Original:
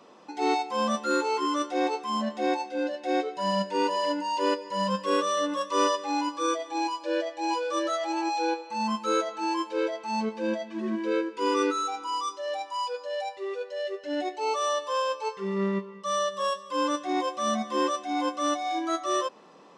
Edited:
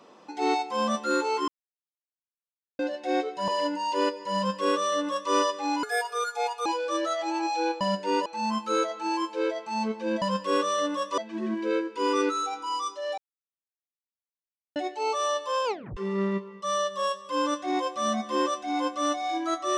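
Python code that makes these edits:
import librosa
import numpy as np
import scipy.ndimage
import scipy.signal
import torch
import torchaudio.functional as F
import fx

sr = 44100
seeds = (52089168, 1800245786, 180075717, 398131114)

y = fx.edit(x, sr, fx.silence(start_s=1.48, length_s=1.31),
    fx.move(start_s=3.48, length_s=0.45, to_s=8.63),
    fx.duplicate(start_s=4.81, length_s=0.96, to_s=10.59),
    fx.speed_span(start_s=6.28, length_s=1.2, speed=1.45),
    fx.silence(start_s=12.59, length_s=1.58),
    fx.tape_stop(start_s=15.06, length_s=0.32), tone=tone)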